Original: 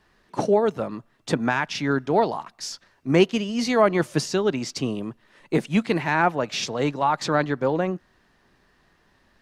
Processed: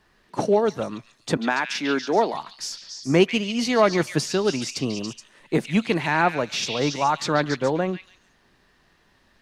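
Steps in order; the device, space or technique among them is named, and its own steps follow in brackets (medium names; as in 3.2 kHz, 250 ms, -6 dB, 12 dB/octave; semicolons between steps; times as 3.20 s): 1.37–2.34 s: high-pass 210 Hz 24 dB/octave; repeats whose band climbs or falls 141 ms, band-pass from 2.9 kHz, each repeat 0.7 oct, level -2 dB; exciter from parts (in parallel at -11 dB: high-pass 4.4 kHz 6 dB/octave + saturation -24 dBFS, distortion -18 dB)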